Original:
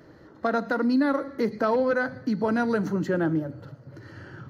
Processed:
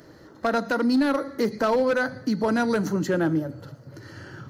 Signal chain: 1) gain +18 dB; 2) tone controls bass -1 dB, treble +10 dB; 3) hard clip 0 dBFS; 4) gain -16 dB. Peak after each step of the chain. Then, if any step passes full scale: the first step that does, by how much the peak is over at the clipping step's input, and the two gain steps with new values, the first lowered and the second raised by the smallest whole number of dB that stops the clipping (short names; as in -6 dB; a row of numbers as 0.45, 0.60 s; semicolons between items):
+5.5, +5.5, 0.0, -16.0 dBFS; step 1, 5.5 dB; step 1 +12 dB, step 4 -10 dB